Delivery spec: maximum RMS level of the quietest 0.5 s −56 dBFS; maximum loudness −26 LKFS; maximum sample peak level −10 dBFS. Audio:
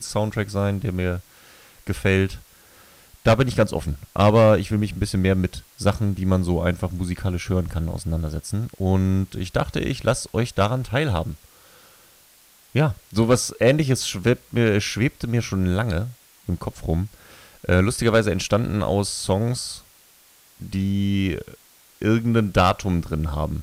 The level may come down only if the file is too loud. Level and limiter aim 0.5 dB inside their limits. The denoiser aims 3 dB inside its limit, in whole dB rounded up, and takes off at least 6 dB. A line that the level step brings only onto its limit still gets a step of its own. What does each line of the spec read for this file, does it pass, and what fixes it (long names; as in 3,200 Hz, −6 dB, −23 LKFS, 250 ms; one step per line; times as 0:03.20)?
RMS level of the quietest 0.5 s −54 dBFS: out of spec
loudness −22.5 LKFS: out of spec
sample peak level −4.0 dBFS: out of spec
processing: level −4 dB
brickwall limiter −10.5 dBFS